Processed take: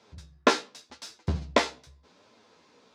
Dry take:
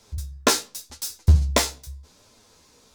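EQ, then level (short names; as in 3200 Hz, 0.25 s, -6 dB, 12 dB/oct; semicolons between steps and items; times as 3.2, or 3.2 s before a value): BPF 190–3200 Hz; 0.0 dB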